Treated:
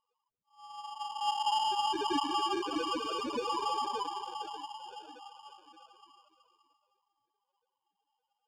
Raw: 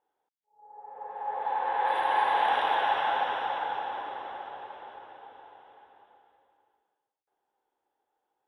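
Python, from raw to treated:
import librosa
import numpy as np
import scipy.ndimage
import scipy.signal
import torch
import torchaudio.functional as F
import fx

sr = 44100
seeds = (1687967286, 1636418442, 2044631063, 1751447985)

p1 = scipy.signal.sosfilt(scipy.signal.butter(4, 1100.0, 'highpass', fs=sr, output='sos'), x)
p2 = fx.high_shelf(p1, sr, hz=2600.0, db=7.0)
p3 = fx.over_compress(p2, sr, threshold_db=-37.0, ratio=-1.0)
p4 = p2 + F.gain(torch.from_numpy(p3), 2.5).numpy()
p5 = fx.spec_topn(p4, sr, count=2)
p6 = fx.sample_hold(p5, sr, seeds[0], rate_hz=2000.0, jitter_pct=0)
p7 = fx.air_absorb(p6, sr, metres=110.0)
p8 = p7 + fx.echo_single(p7, sr, ms=574, db=-11.5, dry=0)
p9 = fx.notch_cascade(p8, sr, direction='falling', hz=0.3)
y = F.gain(torch.from_numpy(p9), 7.5).numpy()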